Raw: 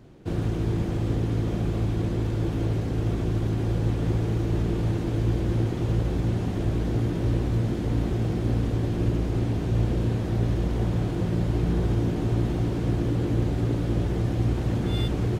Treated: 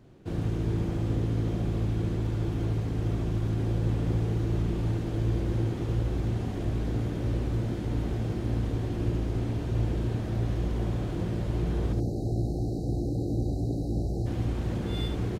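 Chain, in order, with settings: spectral selection erased 11.93–14.26 s, 850–3800 Hz; delay 72 ms -7 dB; trim -5 dB

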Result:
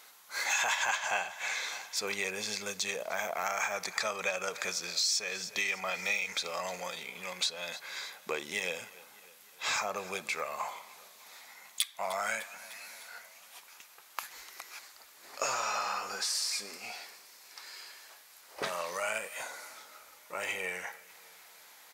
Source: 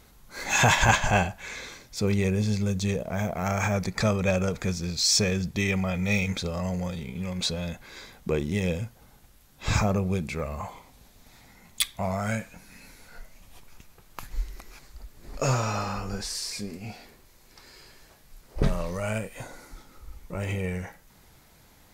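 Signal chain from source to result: high-pass 880 Hz 12 dB/octave; on a send: feedback delay 301 ms, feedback 59%, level -23 dB; on the sum: compression 4:1, threshold -34 dBFS, peak gain reduction 13.5 dB; trim +4.5 dB

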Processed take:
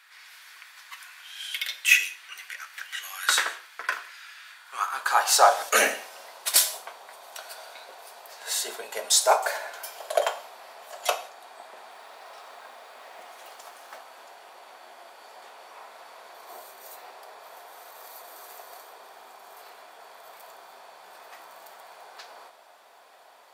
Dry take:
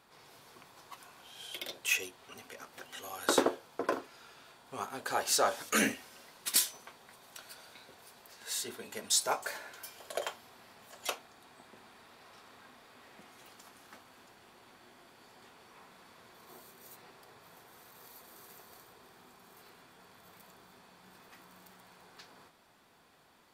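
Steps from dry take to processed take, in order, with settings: gated-style reverb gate 210 ms falling, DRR 10 dB; 11.90–13.98 s: modulation noise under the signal 21 dB; high-pass sweep 1.8 kHz -> 640 Hz, 4.48–5.67 s; trim +7.5 dB

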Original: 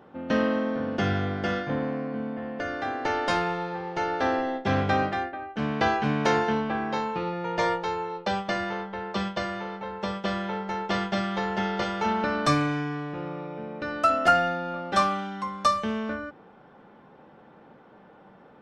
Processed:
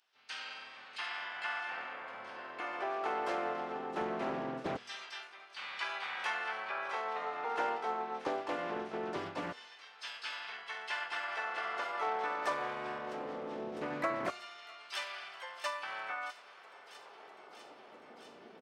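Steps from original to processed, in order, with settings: LFO high-pass saw down 0.21 Hz 310–4100 Hz; peaking EQ 4.5 kHz -5.5 dB 0.62 oct; de-hum 242.9 Hz, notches 15; compression 2:1, threshold -33 dBFS, peak gain reduction 9.5 dB; on a send: feedback echo behind a high-pass 651 ms, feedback 82%, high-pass 2.4 kHz, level -13.5 dB; on the sum: dynamic bell 250 Hz, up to -4 dB, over -58 dBFS, Q 2.2; high-pass 100 Hz 24 dB/octave; band-stop 540 Hz, Q 12; harmony voices -12 st -2 dB, -3 st -1 dB, +7 st -4 dB; loudspeaker Doppler distortion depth 0.37 ms; trim -9 dB

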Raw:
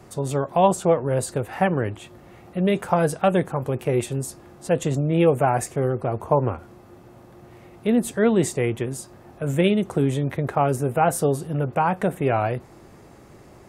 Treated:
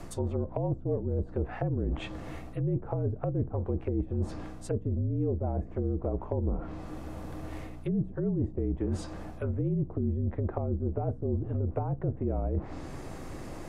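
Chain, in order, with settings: low-pass that closes with the level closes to 350 Hz, closed at -19 dBFS; reverse; compression 6:1, threshold -33 dBFS, peak gain reduction 15.5 dB; reverse; hum 60 Hz, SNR 12 dB; frequency shift -44 Hz; trim +5.5 dB

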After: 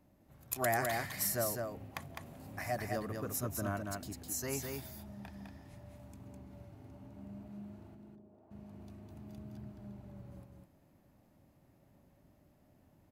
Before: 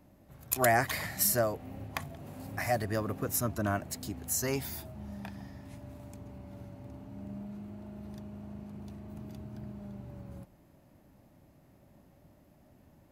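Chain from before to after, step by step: 7.94–8.50 s: band-pass filter 200 Hz -> 780 Hz, Q 1.7; delay 206 ms -4 dB; trim -7 dB

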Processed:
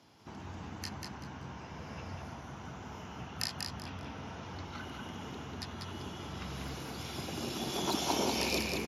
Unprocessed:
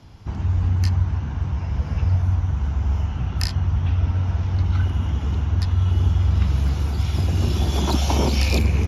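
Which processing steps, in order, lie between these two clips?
high-pass 250 Hz 12 dB/octave; treble shelf 6.1 kHz +4.5 dB; feedback delay 192 ms, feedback 26%, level -4 dB; trim -8.5 dB

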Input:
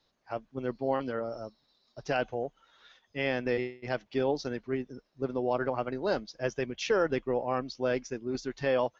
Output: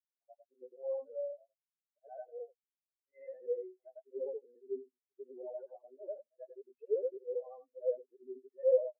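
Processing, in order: short-time spectra conjugated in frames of 220 ms; bass shelf 140 Hz -6.5 dB; overdrive pedal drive 21 dB, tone 2.1 kHz, clips at -19 dBFS; distance through air 140 m; band-stop 1.3 kHz, Q 6.7; spectral contrast expander 4:1; trim +1 dB

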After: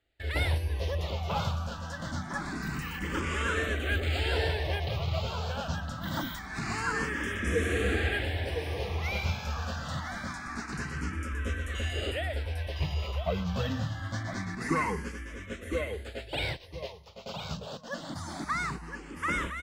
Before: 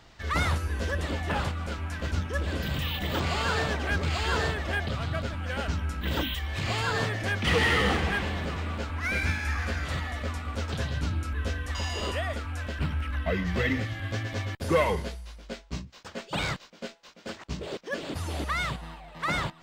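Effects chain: spectral replace 7.17–8.06 s, 500–4900 Hz both; gate with hold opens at -37 dBFS; on a send: feedback delay 1010 ms, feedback 22%, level -7 dB; on the sum: barber-pole phaser +0.25 Hz

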